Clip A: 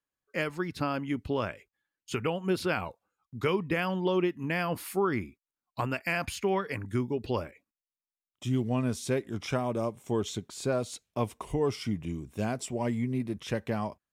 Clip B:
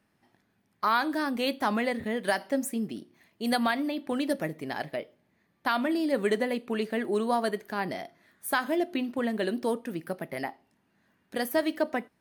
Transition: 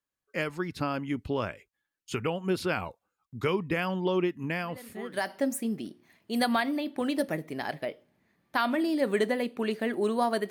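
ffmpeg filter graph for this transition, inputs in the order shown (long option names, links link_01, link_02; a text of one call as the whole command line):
ffmpeg -i cue0.wav -i cue1.wav -filter_complex "[0:a]apad=whole_dur=10.5,atrim=end=10.5,atrim=end=5.39,asetpts=PTS-STARTPTS[link_01];[1:a]atrim=start=1.58:end=7.61,asetpts=PTS-STARTPTS[link_02];[link_01][link_02]acrossfade=duration=0.92:curve1=qua:curve2=qua" out.wav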